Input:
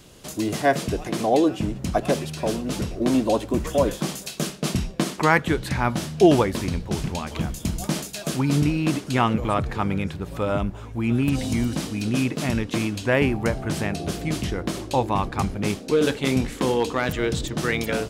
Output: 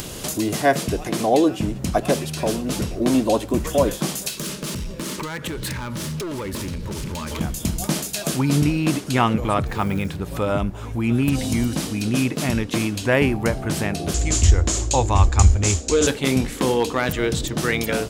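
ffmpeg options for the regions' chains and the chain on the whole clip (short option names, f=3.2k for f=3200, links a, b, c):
-filter_complex "[0:a]asettb=1/sr,asplit=3[a][b][c];[a]atrim=end=4.294[d];[b]atrim=start=4.29:end=7.41,asetpts=PTS-STARTPTS,afade=t=in:d=0.004:c=qsin,afade=t=out:st=3.116:d=0.004:c=qsin,acompressor=threshold=-30dB:ratio=5:attack=3.2:release=140:knee=1:detection=peak,asoftclip=type=hard:threshold=-32dB,asuperstop=centerf=730:order=4:qfactor=4.6[e];[c]atrim=start=7.406[f];[d][e]acrossfade=d=0.004:c1=hsin:c2=qsin[g];[g][f]acrossfade=d=0.004:c1=qsin:c2=hsin,asettb=1/sr,asplit=3[h][i][j];[h]atrim=end=9.674[k];[i]atrim=start=9.67:end=10.15,asetpts=PTS-STARTPTS,afade=t=in:d=0.004:c=qsin,afade=t=out:st=0.476:d=0.004:c=qsin,bandreject=f=60:t=h:w=6,bandreject=f=120:t=h:w=6,bandreject=f=180:t=h:w=6,bandreject=f=240:t=h:w=6,bandreject=f=300:t=h:w=6,bandreject=f=360:t=h:w=6,bandreject=f=420:t=h:w=6,bandreject=f=480:t=h:w=6,bandreject=f=540:t=h:w=6,bandreject=f=600:t=h:w=6,acrusher=bits=8:mode=log:mix=0:aa=0.000001[l];[j]atrim=start=10.146[m];[k][l]acrossfade=d=0.004:c1=hsin:c2=qsin[n];[n][m]acrossfade=d=0.004:c1=qsin:c2=hsin,asettb=1/sr,asplit=3[o][p][q];[o]atrim=end=14.144[r];[p]atrim=start=14.14:end=16.07,asetpts=PTS-STARTPTS,afade=t=in:d=0.004:c=qsin,afade=t=out:st=1.926:d=0.004:c=qsin,lowpass=f=7.1k:t=q:w=8.2,lowshelf=f=110:t=q:w=3:g=12[s];[q]atrim=start=16.066[t];[r][s]acrossfade=d=0.004:c1=hsin:c2=qsin[u];[u][t]acrossfade=d=0.004:c1=qsin:c2=hsin,acompressor=mode=upward:threshold=-24dB:ratio=2.5,highshelf=f=8.2k:g=7,volume=2dB"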